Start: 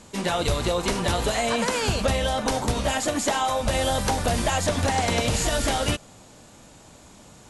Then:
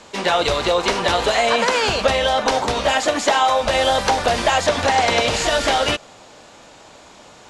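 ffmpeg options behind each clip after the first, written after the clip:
ffmpeg -i in.wav -filter_complex "[0:a]acrossover=split=360 6100:gain=0.224 1 0.141[link_01][link_02][link_03];[link_01][link_02][link_03]amix=inputs=3:normalize=0,volume=8.5dB" out.wav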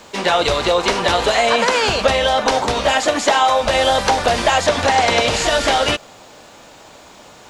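ffmpeg -i in.wav -af "acrusher=bits=9:mix=0:aa=0.000001,volume=2dB" out.wav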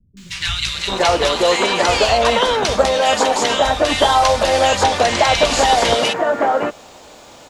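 ffmpeg -i in.wav -filter_complex "[0:a]acrossover=split=150|1700[link_01][link_02][link_03];[link_03]adelay=170[link_04];[link_02]adelay=740[link_05];[link_01][link_05][link_04]amix=inputs=3:normalize=0,volume=1.5dB" out.wav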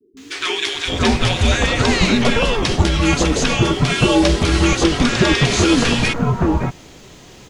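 ffmpeg -i in.wav -af "afreqshift=-460" out.wav

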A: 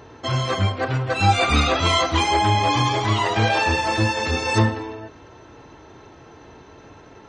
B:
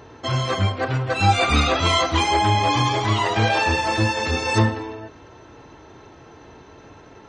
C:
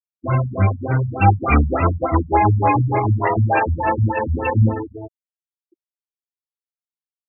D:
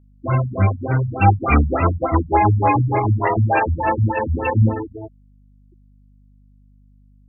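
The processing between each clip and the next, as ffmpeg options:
ffmpeg -i in.wav -af anull out.wav
ffmpeg -i in.wav -af "afftfilt=real='re*gte(hypot(re,im),0.0631)':imag='im*gte(hypot(re,im),0.0631)':win_size=1024:overlap=0.75,afftfilt=real='re*lt(b*sr/1024,200*pow(2800/200,0.5+0.5*sin(2*PI*3.4*pts/sr)))':imag='im*lt(b*sr/1024,200*pow(2800/200,0.5+0.5*sin(2*PI*3.4*pts/sr)))':win_size=1024:overlap=0.75,volume=5dB" out.wav
ffmpeg -i in.wav -af "aeval=exprs='val(0)+0.00316*(sin(2*PI*50*n/s)+sin(2*PI*2*50*n/s)/2+sin(2*PI*3*50*n/s)/3+sin(2*PI*4*50*n/s)/4+sin(2*PI*5*50*n/s)/5)':channel_layout=same" out.wav

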